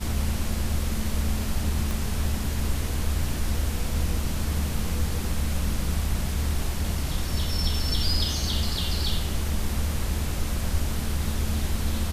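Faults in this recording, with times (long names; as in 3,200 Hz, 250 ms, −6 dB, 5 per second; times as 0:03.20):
0:01.91: click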